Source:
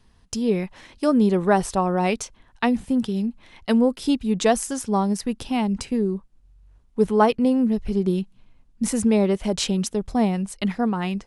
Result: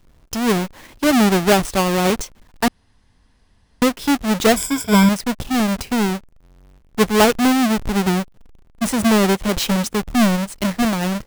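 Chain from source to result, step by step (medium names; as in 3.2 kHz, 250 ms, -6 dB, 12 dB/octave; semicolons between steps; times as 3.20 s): square wave that keeps the level; 2.68–3.82 s: room tone; 4.56–5.09 s: rippled EQ curve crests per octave 1.7, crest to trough 16 dB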